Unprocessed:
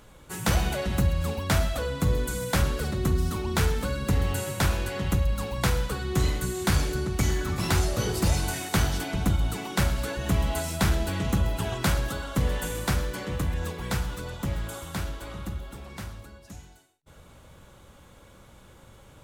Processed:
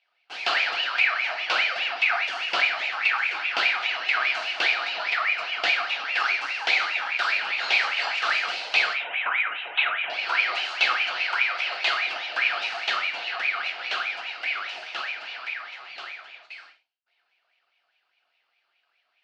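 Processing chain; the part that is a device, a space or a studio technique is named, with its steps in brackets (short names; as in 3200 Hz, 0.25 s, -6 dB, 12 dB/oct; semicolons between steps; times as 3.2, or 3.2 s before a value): 8.93–10.1 elliptic low-pass 1400 Hz, stop band 50 dB; gate with hold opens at -38 dBFS; voice changer toy (ring modulator with a swept carrier 1800 Hz, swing 35%, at 4.9 Hz; speaker cabinet 590–4600 Hz, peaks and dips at 710 Hz +8 dB, 1100 Hz -8 dB, 1900 Hz -6 dB, 2800 Hz +7 dB, 4400 Hz +7 dB); 11.16–12.05 bell 110 Hz -15 dB -> -8.5 dB 2.2 oct; non-linear reverb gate 0.13 s falling, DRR 4.5 dB; gain +2.5 dB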